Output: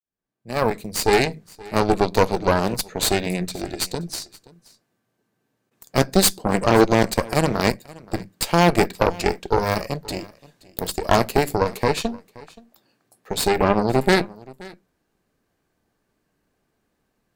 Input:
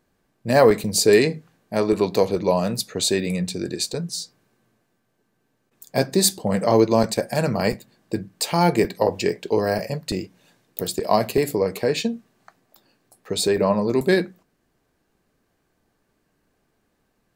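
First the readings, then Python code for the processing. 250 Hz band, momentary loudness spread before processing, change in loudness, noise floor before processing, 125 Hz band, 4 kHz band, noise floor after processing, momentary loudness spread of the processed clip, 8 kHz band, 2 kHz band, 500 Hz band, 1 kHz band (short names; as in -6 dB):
0.0 dB, 14 LU, +0.5 dB, -71 dBFS, +2.0 dB, +0.5 dB, -74 dBFS, 15 LU, -0.5 dB, +3.5 dB, -1.5 dB, +4.0 dB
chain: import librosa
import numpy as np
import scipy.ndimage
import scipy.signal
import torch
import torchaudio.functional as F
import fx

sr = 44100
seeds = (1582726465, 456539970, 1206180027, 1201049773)

y = fx.fade_in_head(x, sr, length_s=1.68)
y = fx.cheby_harmonics(y, sr, harmonics=(6, 7), levels_db=(-12, -29), full_scale_db=-3.5)
y = y + 10.0 ** (-22.0 / 20.0) * np.pad(y, (int(525 * sr / 1000.0), 0))[:len(y)]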